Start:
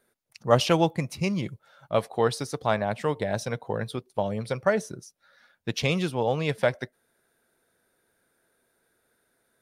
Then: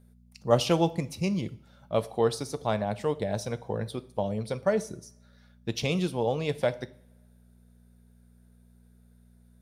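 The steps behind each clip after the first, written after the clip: peaking EQ 1.6 kHz -7 dB 1.4 oct; mains buzz 60 Hz, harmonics 4, -56 dBFS -3 dB/octave; two-slope reverb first 0.48 s, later 1.6 s, from -22 dB, DRR 13 dB; trim -1.5 dB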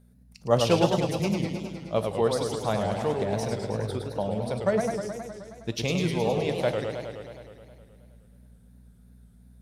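modulated delay 105 ms, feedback 73%, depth 207 cents, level -5 dB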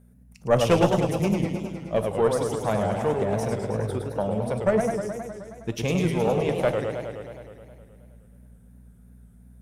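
peaking EQ 4.3 kHz -12 dB 0.75 oct; valve stage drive 11 dB, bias 0.7; trim +7 dB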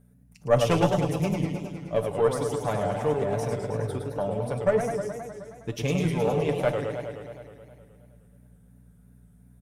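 comb 6.9 ms, depth 49%; trim -3 dB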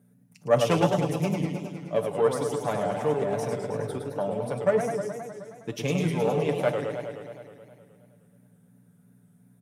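high-pass 130 Hz 24 dB/octave

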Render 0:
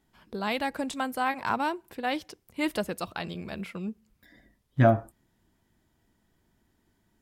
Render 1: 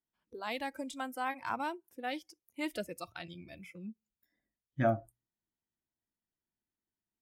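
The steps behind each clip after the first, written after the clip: spectral noise reduction 18 dB; bass shelf 140 Hz -5 dB; hum notches 60/120 Hz; trim -7.5 dB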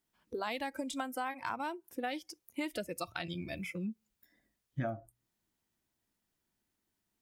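compression 8:1, threshold -44 dBFS, peak gain reduction 19.5 dB; trim +10 dB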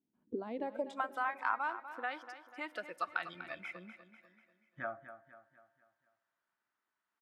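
band-pass sweep 250 Hz -> 1.3 kHz, 0.44–1.06 s; feedback delay 245 ms, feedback 46%, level -12 dB; on a send at -23 dB: reverberation RT60 2.8 s, pre-delay 3 ms; on the sum: trim +7.5 dB

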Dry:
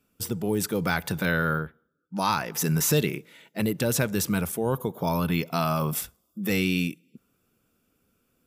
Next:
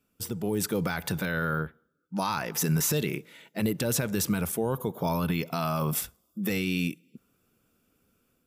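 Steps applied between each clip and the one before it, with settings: peak limiter -17.5 dBFS, peak gain reduction 8 dB; level rider gain up to 4 dB; trim -3.5 dB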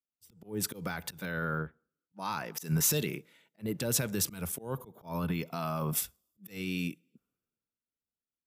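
slow attack 138 ms; three bands expanded up and down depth 70%; trim -5 dB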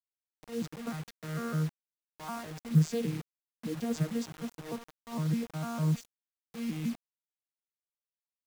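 vocoder on a broken chord bare fifth, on D#3, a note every 152 ms; bit crusher 8-bit; trim +2.5 dB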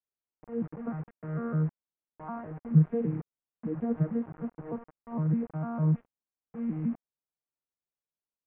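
Gaussian low-pass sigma 6 samples; trim +3 dB

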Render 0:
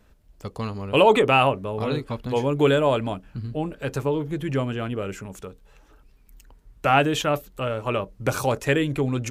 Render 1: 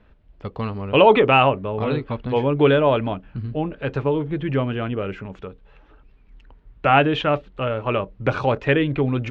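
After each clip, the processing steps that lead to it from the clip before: low-pass 3.4 kHz 24 dB/octave; trim +3 dB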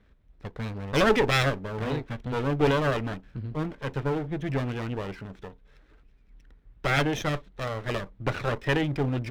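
comb filter that takes the minimum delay 0.52 ms; trim -5.5 dB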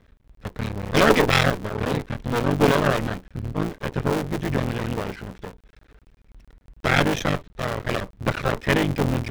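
cycle switcher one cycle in 3, muted; trim +6.5 dB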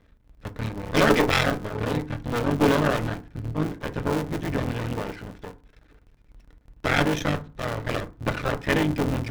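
reverberation RT60 0.35 s, pre-delay 3 ms, DRR 9 dB; trim -3 dB

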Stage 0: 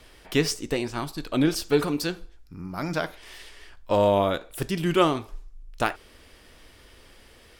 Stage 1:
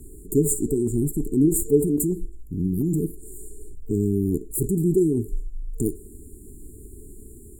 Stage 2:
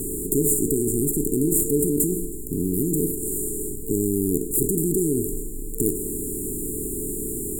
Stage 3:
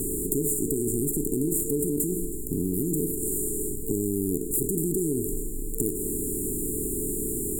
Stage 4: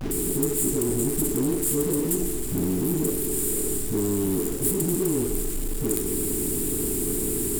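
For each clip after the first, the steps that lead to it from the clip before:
FFT band-reject 450–6900 Hz; in parallel at -0.5 dB: compressor with a negative ratio -33 dBFS, ratio -0.5; on the sum: trim +3.5 dB
spectral levelling over time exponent 0.4; treble shelf 8.4 kHz +12 dB; trim -7 dB
compression 4:1, threshold -23 dBFS, peak gain reduction 6.5 dB
phase dispersion highs, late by 110 ms, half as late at 430 Hz; flange 1.9 Hz, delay 7.2 ms, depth 8.7 ms, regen -82%; in parallel at -9 dB: companded quantiser 2-bit; on the sum: trim +3 dB

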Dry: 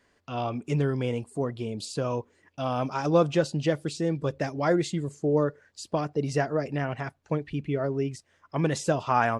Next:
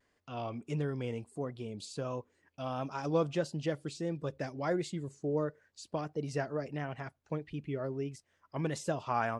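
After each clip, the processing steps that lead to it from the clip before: vibrato 1.5 Hz 58 cents; trim -8.5 dB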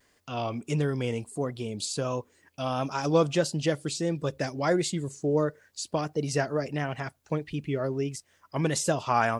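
treble shelf 4.2 kHz +10.5 dB; trim +7 dB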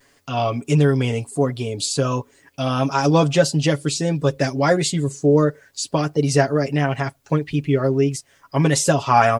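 comb 7.2 ms; trim +7.5 dB

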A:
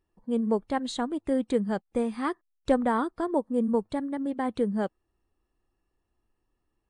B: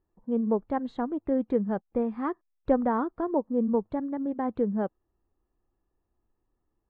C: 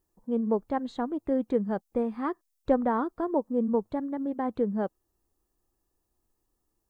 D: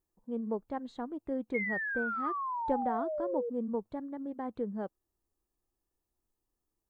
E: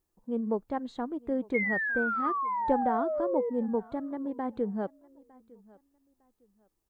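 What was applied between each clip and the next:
low-pass 1.3 kHz 12 dB/octave
tone controls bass -2 dB, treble +14 dB
painted sound fall, 1.54–3.50 s, 460–2200 Hz -27 dBFS; trim -8 dB
feedback delay 906 ms, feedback 26%, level -24 dB; trim +4.5 dB

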